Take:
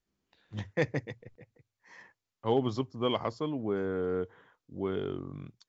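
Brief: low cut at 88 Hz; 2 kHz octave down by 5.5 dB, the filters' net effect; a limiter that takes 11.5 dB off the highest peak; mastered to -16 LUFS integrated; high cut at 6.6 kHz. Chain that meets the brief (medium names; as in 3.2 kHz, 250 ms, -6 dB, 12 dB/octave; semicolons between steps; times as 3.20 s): high-pass 88 Hz; low-pass 6.6 kHz; peaking EQ 2 kHz -6.5 dB; trim +23 dB; peak limiter -4.5 dBFS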